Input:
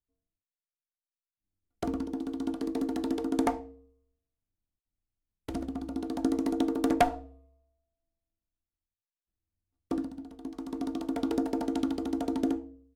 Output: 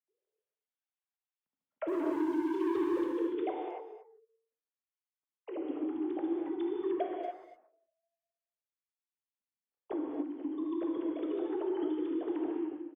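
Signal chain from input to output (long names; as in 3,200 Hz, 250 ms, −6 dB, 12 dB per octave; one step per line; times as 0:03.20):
three sine waves on the formant tracks
speech leveller within 3 dB 0.5 s
0:01.88–0:03.04: leveller curve on the samples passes 3
downward compressor 4 to 1, threshold −35 dBFS, peak gain reduction 15 dB
far-end echo of a speakerphone 230 ms, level −14 dB
reverb whose tail is shaped and stops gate 320 ms flat, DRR −1 dB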